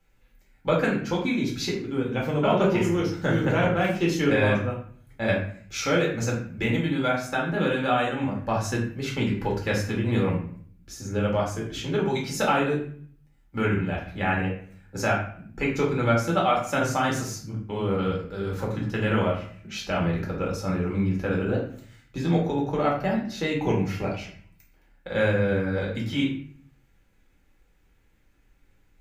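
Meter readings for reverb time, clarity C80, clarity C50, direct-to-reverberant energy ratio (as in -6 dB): 0.55 s, 9.0 dB, 5.0 dB, -3.0 dB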